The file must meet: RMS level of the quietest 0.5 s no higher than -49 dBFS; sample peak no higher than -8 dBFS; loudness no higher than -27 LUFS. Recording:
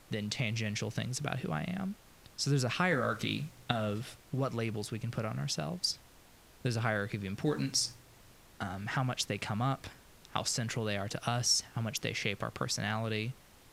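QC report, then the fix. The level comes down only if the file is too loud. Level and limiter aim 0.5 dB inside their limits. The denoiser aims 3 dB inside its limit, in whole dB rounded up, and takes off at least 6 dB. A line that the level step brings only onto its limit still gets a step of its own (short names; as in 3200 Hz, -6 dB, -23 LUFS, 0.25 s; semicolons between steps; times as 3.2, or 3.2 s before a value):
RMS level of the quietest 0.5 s -59 dBFS: OK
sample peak -13.0 dBFS: OK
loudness -34.0 LUFS: OK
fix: none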